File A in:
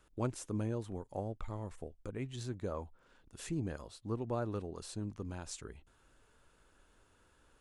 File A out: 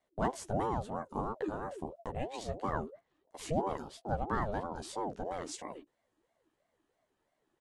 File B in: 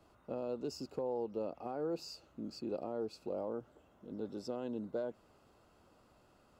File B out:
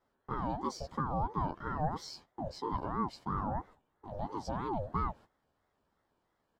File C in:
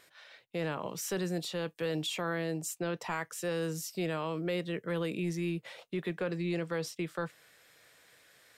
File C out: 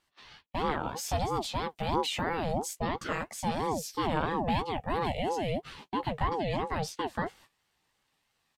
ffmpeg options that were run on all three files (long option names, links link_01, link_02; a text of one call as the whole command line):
ffmpeg -i in.wav -filter_complex "[0:a]agate=range=-16dB:threshold=-56dB:ratio=16:detection=peak,asuperstop=centerf=1800:order=4:qfactor=4,highshelf=frequency=7400:gain=-7,asplit=2[link_01][link_02];[link_02]adelay=13,volume=-4dB[link_03];[link_01][link_03]amix=inputs=2:normalize=0,aeval=exprs='val(0)*sin(2*PI*490*n/s+490*0.4/3*sin(2*PI*3*n/s))':channel_layout=same,volume=5.5dB" out.wav